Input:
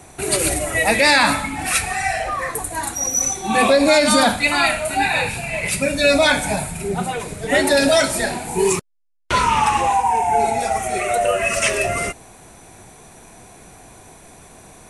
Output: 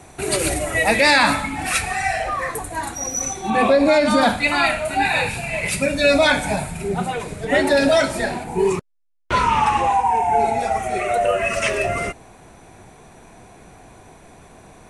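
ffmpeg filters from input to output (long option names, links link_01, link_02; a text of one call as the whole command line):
ffmpeg -i in.wav -af "asetnsamples=nb_out_samples=441:pad=0,asendcmd='2.59 lowpass f 3700;3.5 lowpass f 1700;4.23 lowpass f 3800;5.05 lowpass f 8700;5.86 lowpass f 4700;7.45 lowpass f 2800;8.44 lowpass f 1500;9.32 lowpass f 2900',lowpass=frequency=6400:poles=1" out.wav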